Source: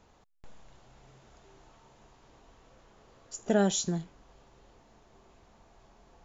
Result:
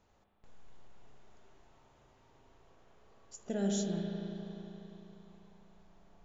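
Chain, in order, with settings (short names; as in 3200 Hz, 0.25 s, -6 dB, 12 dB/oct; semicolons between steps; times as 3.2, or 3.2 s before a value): 3.49–3.91 bell 1100 Hz -14 dB 0.99 oct; spring tank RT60 3.7 s, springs 35/50 ms, chirp 65 ms, DRR -0.5 dB; gain -9 dB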